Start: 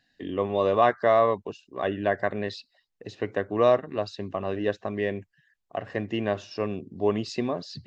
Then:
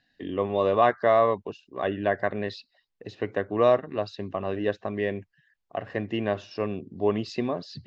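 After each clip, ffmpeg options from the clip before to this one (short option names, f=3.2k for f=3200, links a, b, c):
-af "lowpass=5.1k"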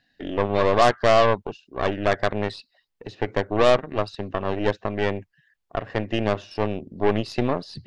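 -af "aeval=exprs='0.376*(cos(1*acos(clip(val(0)/0.376,-1,1)))-cos(1*PI/2))+0.0531*(cos(8*acos(clip(val(0)/0.376,-1,1)))-cos(8*PI/2))':c=same,volume=2.5dB"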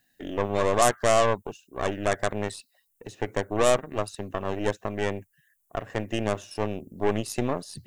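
-af "aexciter=amount=13.6:drive=4.1:freq=6.8k,volume=-4dB"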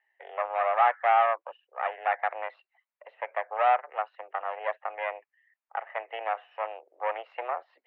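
-af "highpass=f=500:t=q:w=0.5412,highpass=f=500:t=q:w=1.307,lowpass=f=2.4k:t=q:w=0.5176,lowpass=f=2.4k:t=q:w=0.7071,lowpass=f=2.4k:t=q:w=1.932,afreqshift=120"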